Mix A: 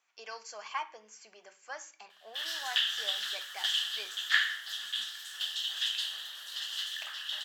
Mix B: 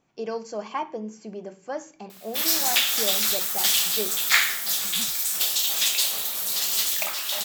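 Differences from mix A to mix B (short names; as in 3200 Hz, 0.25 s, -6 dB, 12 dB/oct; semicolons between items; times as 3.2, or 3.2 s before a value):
speech: remove Chebyshev high-pass 1500 Hz, order 2; background: remove double band-pass 2300 Hz, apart 0.82 oct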